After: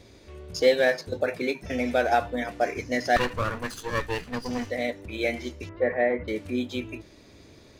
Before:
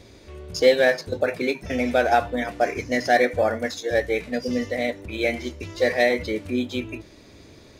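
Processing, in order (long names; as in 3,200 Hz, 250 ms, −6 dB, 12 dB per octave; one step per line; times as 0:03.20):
0:03.16–0:04.70: lower of the sound and its delayed copy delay 0.66 ms
0:05.69–0:06.28: low-pass filter 1,900 Hz 24 dB per octave
level −3.5 dB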